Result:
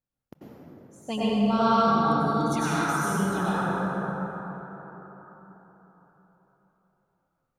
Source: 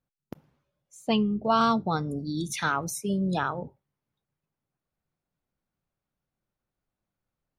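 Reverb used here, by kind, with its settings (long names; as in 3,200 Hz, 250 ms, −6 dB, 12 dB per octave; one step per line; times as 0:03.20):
dense smooth reverb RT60 4.4 s, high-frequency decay 0.4×, pre-delay 80 ms, DRR −9.5 dB
level −7.5 dB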